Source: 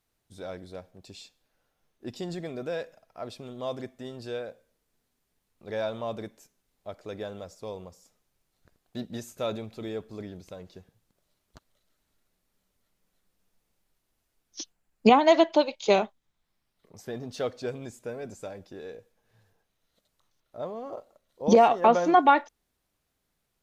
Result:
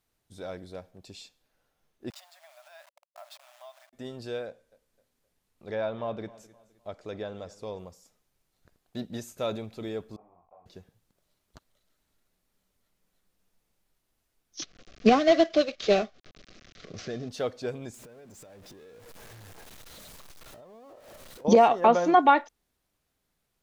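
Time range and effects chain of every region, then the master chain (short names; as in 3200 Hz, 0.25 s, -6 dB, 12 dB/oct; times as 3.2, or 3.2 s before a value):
2.1–3.93 level-crossing sampler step -44.5 dBFS + compressor 10:1, threshold -41 dBFS + brick-wall FIR high-pass 560 Hz
4.46–7.79 treble ducked by the level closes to 2800 Hz, closed at -29 dBFS + feedback echo 0.259 s, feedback 36%, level -20 dB
10.16–10.66 level-crossing sampler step -42.5 dBFS + vocal tract filter a + doubler 23 ms -2 dB
14.62–17.29 CVSD 32 kbps + Butterworth band-stop 910 Hz, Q 2.9 + upward compressor, threshold -30 dBFS
17.94–21.45 zero-crossing step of -42 dBFS + compressor 20:1, threshold -47 dBFS
whole clip: dry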